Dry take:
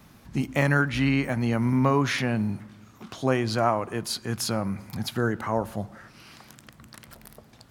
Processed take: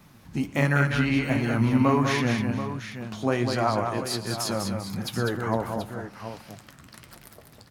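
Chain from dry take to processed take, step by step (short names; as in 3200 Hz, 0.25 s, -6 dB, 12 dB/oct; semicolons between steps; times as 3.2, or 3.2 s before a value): flange 1.4 Hz, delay 5.2 ms, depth 7.4 ms, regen +54%; 1.31–2.01 transient shaper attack +4 dB, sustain +8 dB; tapped delay 0.113/0.199/0.459/0.732 s -19/-5.5/-18.5/-11 dB; gain +3 dB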